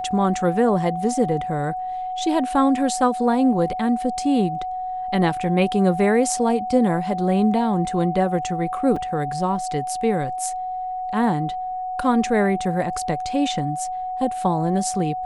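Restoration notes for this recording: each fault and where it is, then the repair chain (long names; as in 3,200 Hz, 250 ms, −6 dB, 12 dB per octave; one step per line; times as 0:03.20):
whistle 740 Hz −25 dBFS
0:08.96: drop-out 4.5 ms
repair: notch filter 740 Hz, Q 30
repair the gap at 0:08.96, 4.5 ms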